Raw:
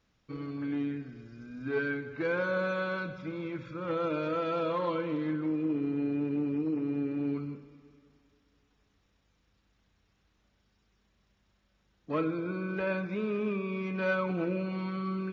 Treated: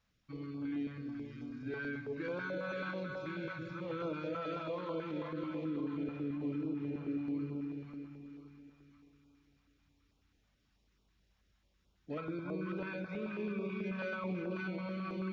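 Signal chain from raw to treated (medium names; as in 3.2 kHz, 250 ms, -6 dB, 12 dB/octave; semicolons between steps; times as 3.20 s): two-band feedback delay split 990 Hz, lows 342 ms, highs 526 ms, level -5 dB; peak limiter -24.5 dBFS, peak gain reduction 6.5 dB; step-sequenced notch 9.2 Hz 350–1800 Hz; trim -4.5 dB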